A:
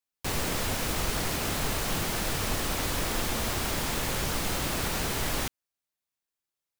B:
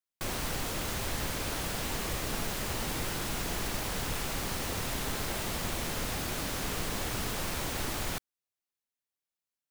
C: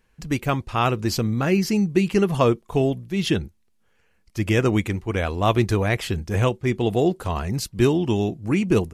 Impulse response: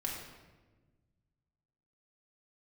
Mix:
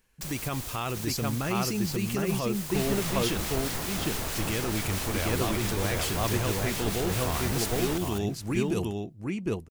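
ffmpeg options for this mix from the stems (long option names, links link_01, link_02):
-filter_complex "[0:a]acrossover=split=1500[link_01][link_02];[link_01]aeval=exprs='val(0)*(1-0.5/2+0.5/2*cos(2*PI*4.6*n/s))':channel_layout=same[link_03];[link_02]aeval=exprs='val(0)*(1-0.5/2-0.5/2*cos(2*PI*4.6*n/s))':channel_layout=same[link_04];[link_03][link_04]amix=inputs=2:normalize=0,adelay=2500,volume=-1.5dB,asplit=2[link_05][link_06];[link_06]volume=-21.5dB[link_07];[1:a]volume=-10dB,asplit=2[link_08][link_09];[link_09]volume=-23.5dB[link_10];[2:a]volume=-6dB,asplit=2[link_11][link_12];[link_12]volume=-5dB[link_13];[link_08][link_11]amix=inputs=2:normalize=0,highshelf=frequency=4300:gain=12,alimiter=limit=-21.5dB:level=0:latency=1:release=38,volume=0dB[link_14];[link_07][link_10][link_13]amix=inputs=3:normalize=0,aecho=0:1:756:1[link_15];[link_05][link_14][link_15]amix=inputs=3:normalize=0"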